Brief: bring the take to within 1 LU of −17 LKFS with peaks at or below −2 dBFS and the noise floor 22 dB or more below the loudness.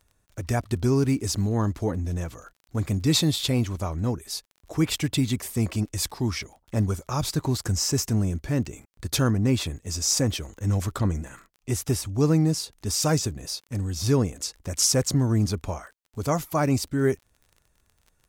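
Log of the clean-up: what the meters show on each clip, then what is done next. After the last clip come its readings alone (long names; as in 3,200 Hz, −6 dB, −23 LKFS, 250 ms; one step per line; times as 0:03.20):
crackle rate 26 per second; integrated loudness −25.5 LKFS; sample peak −9.5 dBFS; target loudness −17.0 LKFS
→ click removal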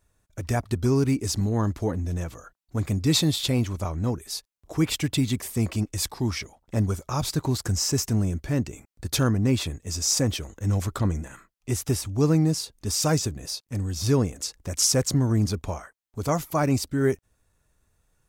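crackle rate 0.27 per second; integrated loudness −25.5 LKFS; sample peak −9.5 dBFS; target loudness −17.0 LKFS
→ level +8.5 dB
brickwall limiter −2 dBFS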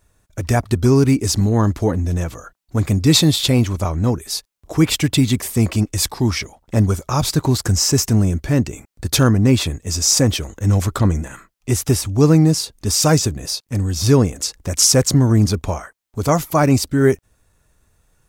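integrated loudness −17.0 LKFS; sample peak −2.0 dBFS; background noise floor −64 dBFS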